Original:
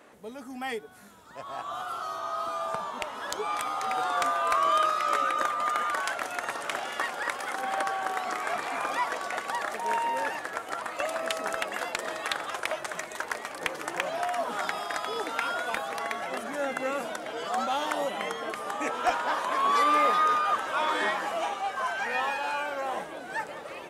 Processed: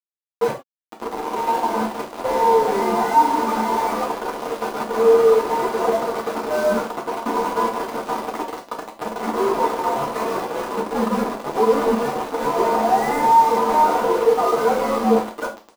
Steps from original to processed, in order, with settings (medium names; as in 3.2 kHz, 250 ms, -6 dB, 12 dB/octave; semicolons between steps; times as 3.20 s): comb filter that takes the minimum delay 3.9 ms; doubling 13 ms -4.5 dB; time stretch by phase-locked vocoder 0.66×; peak limiter -21.5 dBFS, peak gain reduction 8.5 dB; flange 0.15 Hz, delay 8.7 ms, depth 1.1 ms, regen +84%; mistuned SSB -320 Hz 300–2800 Hz; on a send: delay 143 ms -11 dB; on the sum: bit crusher 6-bit; high-order bell 520 Hz +14.5 dB 2.7 oct; gated-style reverb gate 120 ms falling, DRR -0.5 dB